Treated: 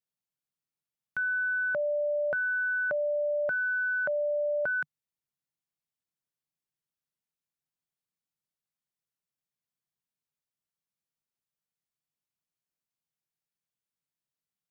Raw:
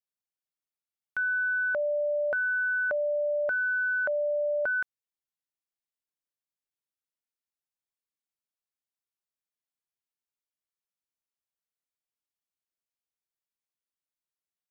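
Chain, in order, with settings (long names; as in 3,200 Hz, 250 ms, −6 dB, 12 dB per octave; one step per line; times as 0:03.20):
parametric band 150 Hz +13.5 dB 0.94 octaves
level −1.5 dB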